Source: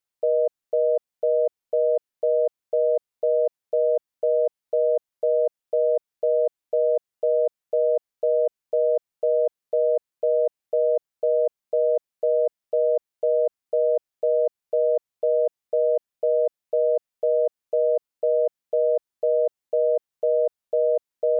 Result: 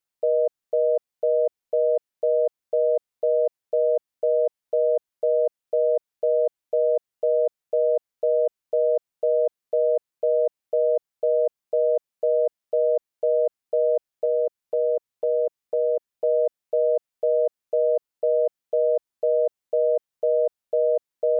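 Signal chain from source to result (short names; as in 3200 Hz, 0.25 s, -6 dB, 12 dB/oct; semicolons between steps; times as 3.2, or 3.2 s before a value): 14.25–16.24 dynamic EQ 700 Hz, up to -5 dB, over -39 dBFS, Q 3.8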